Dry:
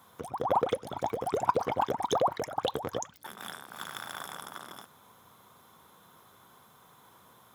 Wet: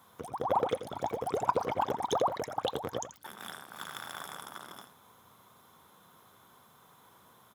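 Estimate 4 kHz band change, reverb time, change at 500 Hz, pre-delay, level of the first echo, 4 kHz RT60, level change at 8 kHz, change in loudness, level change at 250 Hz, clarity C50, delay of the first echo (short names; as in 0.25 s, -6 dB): -1.5 dB, none, -1.5 dB, none, -12.0 dB, none, -1.5 dB, -1.5 dB, -2.0 dB, none, 84 ms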